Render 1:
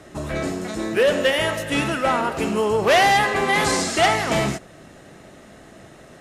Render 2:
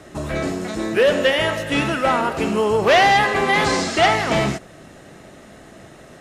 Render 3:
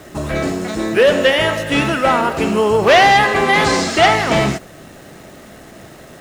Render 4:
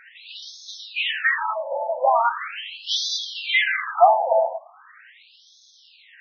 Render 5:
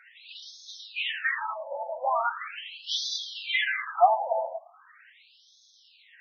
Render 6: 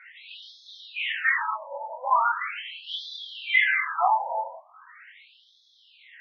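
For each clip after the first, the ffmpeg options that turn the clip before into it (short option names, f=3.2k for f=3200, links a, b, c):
-filter_complex "[0:a]acrossover=split=6200[a][b];[b]acompressor=threshold=-45dB:ratio=4:attack=1:release=60[c];[a][c]amix=inputs=2:normalize=0,volume=2dB"
-af "acrusher=bits=9:dc=4:mix=0:aa=0.000001,volume=4dB"
-af "afftfilt=real='re*between(b*sr/1024,670*pow(4700/670,0.5+0.5*sin(2*PI*0.4*pts/sr))/1.41,670*pow(4700/670,0.5+0.5*sin(2*PI*0.4*pts/sr))*1.41)':imag='im*between(b*sr/1024,670*pow(4700/670,0.5+0.5*sin(2*PI*0.4*pts/sr))/1.41,670*pow(4700/670,0.5+0.5*sin(2*PI*0.4*pts/sr))*1.41)':win_size=1024:overlap=0.75"
-af "highpass=f=530:p=1,flanger=delay=1.4:depth=7.6:regen=42:speed=0.43:shape=sinusoidal,volume=-2dB"
-filter_complex "[0:a]flanger=delay=22.5:depth=3.4:speed=0.4,highpass=420,equalizer=f=680:t=q:w=4:g=-9,equalizer=f=1k:t=q:w=4:g=9,equalizer=f=1.4k:t=q:w=4:g=4,equalizer=f=2.1k:t=q:w=4:g=9,equalizer=f=3.2k:t=q:w=4:g=4,lowpass=f=4.3k:w=0.5412,lowpass=f=4.3k:w=1.3066,acrossover=split=2900[a][b];[b]acompressor=threshold=-45dB:ratio=4:attack=1:release=60[c];[a][c]amix=inputs=2:normalize=0,volume=3dB"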